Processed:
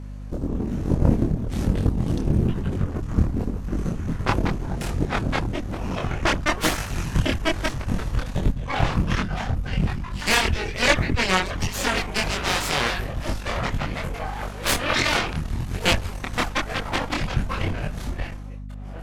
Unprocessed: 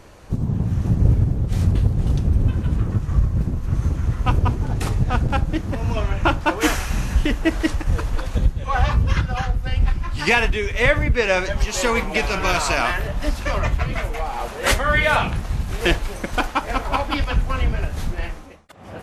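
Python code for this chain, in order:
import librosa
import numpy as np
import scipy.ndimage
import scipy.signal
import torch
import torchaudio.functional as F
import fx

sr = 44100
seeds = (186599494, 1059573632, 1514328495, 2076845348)

y = fx.cheby_harmonics(x, sr, harmonics=(3, 7, 8), levels_db=(-16, -17, -18), full_scale_db=-2.0)
y = fx.chorus_voices(y, sr, voices=2, hz=1.1, base_ms=24, depth_ms=3.0, mix_pct=45)
y = fx.add_hum(y, sr, base_hz=50, snr_db=11)
y = y * librosa.db_to_amplitude(3.0)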